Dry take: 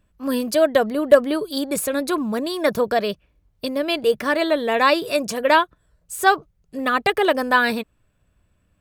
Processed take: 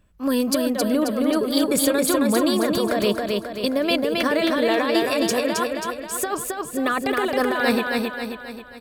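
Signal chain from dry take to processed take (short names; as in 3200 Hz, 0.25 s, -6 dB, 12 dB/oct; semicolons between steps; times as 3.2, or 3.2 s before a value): negative-ratio compressor -22 dBFS, ratio -1; on a send: feedback echo 0.268 s, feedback 50%, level -3 dB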